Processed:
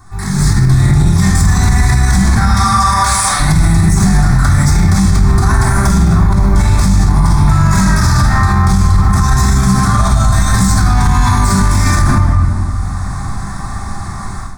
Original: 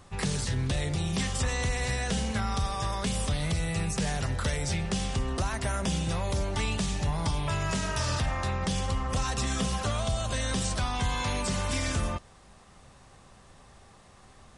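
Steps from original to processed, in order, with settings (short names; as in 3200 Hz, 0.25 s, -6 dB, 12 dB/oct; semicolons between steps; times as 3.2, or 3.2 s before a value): 2.41–3.4 HPF 790 Hz 12 dB/oct; 5.97–6.55 high shelf 4200 Hz -11 dB; short-mantissa float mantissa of 4-bit; soft clip -28.5 dBFS, distortion -12 dB; fixed phaser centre 1200 Hz, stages 4; shoebox room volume 1500 m³, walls mixed, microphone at 3.4 m; AGC gain up to 16 dB; maximiser +10 dB; gain -1 dB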